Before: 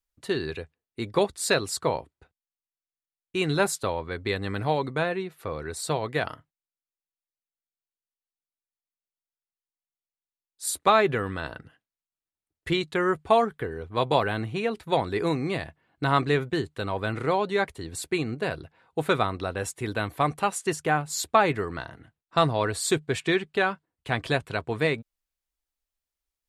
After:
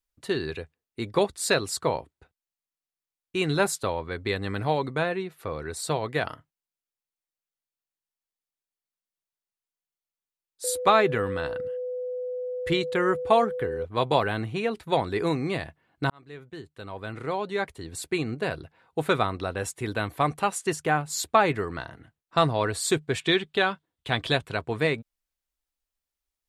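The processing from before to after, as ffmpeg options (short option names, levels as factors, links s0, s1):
-filter_complex "[0:a]asettb=1/sr,asplit=3[s0][s1][s2];[s0]atrim=end=10.644[s3];[s1]atrim=start=10.64:end=13.85,asetpts=PTS-STARTPTS,afade=t=in:d=0.004:c=qsin,afade=t=out:st=3.206:d=0.004:c=qsin,aeval=exprs='val(0)+0.0355*sin(2*PI*500*n/s)':c=same[s4];[s2]atrim=start=13.846[s5];[s3][s4]acrossfade=d=0.004:c1=hsin:c2=qsin[s6];[s6][s5]acrossfade=d=0.004:c1=qsin:c2=hsin,asettb=1/sr,asplit=3[s7][s8][s9];[s7]atrim=end=23.214[s10];[s8]atrim=start=23.21:end=24.43,asetpts=PTS-STARTPTS,afade=t=in:d=0.004:c=qsin,afade=t=out:st=1.216:d=0.004:c=qsin,equalizer=f=3500:w=3.5:g=9[s11];[s9]atrim=start=24.426[s12];[s10][s11]acrossfade=d=0.004:c1=hsin:c2=qsin[s13];[s13][s12]acrossfade=d=0.004:c1=qsin:c2=hsin,asplit=2[s14][s15];[s14]atrim=end=16.1,asetpts=PTS-STARTPTS,afade=t=out:st=16.096:d=0.004:c=hsin[s16];[s15]atrim=start=16.1,asetpts=PTS-STARTPTS,afade=t=in:d=2.19[s17];[s16][s17]concat=n=2:v=0:a=1"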